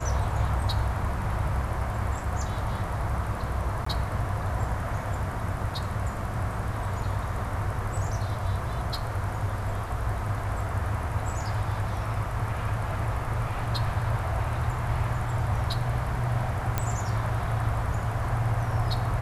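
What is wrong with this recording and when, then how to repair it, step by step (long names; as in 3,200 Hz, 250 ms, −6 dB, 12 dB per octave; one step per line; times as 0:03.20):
0:03.85–0:03.86: drop-out 14 ms
0:16.78: click −11 dBFS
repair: click removal
repair the gap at 0:03.85, 14 ms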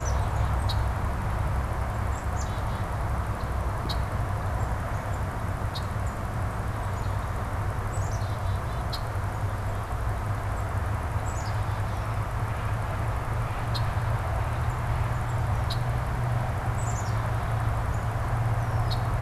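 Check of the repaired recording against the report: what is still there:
none of them is left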